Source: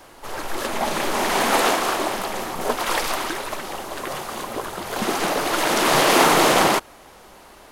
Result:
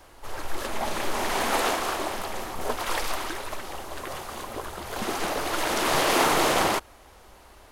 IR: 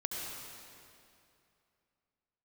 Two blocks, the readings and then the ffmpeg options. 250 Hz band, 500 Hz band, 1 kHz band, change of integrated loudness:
-7.0 dB, -6.5 dB, -6.0 dB, -6.0 dB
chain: -af "lowshelf=f=110:t=q:w=1.5:g=8,volume=-6dB"

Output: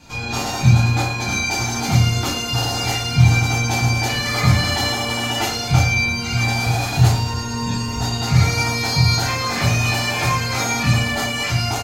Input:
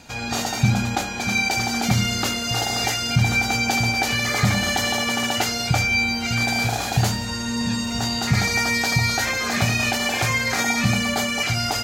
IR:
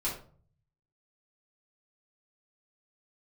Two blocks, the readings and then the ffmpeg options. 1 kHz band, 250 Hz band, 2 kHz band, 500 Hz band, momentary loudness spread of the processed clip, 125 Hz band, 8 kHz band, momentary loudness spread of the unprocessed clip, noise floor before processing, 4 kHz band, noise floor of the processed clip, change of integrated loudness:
+2.0 dB, +0.5 dB, -0.5 dB, +1.5 dB, 6 LU, +7.5 dB, +0.5 dB, 5 LU, -28 dBFS, +1.5 dB, -25 dBFS, +2.5 dB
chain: -filter_complex "[0:a]equalizer=f=110:w=1.8:g=5.5,aecho=1:1:110|220|330|440|550|660|770:0.224|0.134|0.0806|0.0484|0.029|0.0174|0.0104[a];[1:a]atrim=start_sample=2205,afade=t=out:st=0.15:d=0.01,atrim=end_sample=7056[b];[a][b]afir=irnorm=-1:irlink=0,volume=-3.5dB"

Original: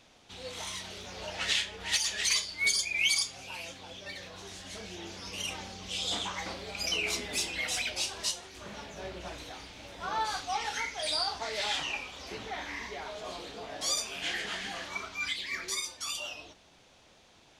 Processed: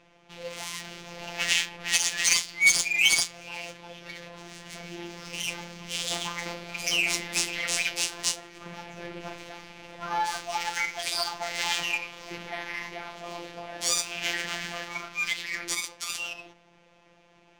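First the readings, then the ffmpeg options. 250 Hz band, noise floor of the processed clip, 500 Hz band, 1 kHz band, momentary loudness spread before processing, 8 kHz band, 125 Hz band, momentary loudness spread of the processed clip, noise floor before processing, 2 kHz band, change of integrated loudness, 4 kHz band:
+3.5 dB, -60 dBFS, +1.5 dB, +3.0 dB, 15 LU, +6.0 dB, +3.0 dB, 20 LU, -60 dBFS, +6.5 dB, +5.5 dB, +2.5 dB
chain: -af "aexciter=amount=1.8:drive=1.1:freq=2.1k,afftfilt=real='hypot(re,im)*cos(PI*b)':imag='0':win_size=1024:overlap=0.75,adynamicsmooth=sensitivity=6.5:basefreq=2.4k,volume=6dB"

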